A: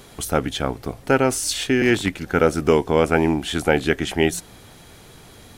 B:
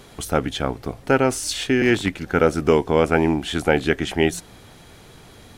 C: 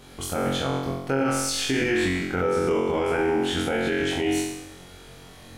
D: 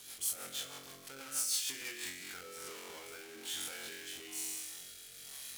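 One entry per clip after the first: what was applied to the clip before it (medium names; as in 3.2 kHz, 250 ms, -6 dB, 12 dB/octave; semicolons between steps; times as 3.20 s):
treble shelf 7.7 kHz -6 dB
on a send: flutter echo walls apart 3.8 m, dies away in 0.85 s; on the sum: peak limiter -10 dBFS, peak gain reduction 10 dB; trim -5 dB
power-law waveshaper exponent 0.5; pre-emphasis filter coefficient 0.97; rotary cabinet horn 6.3 Hz, later 1.1 Hz, at 1.75 s; trim -7 dB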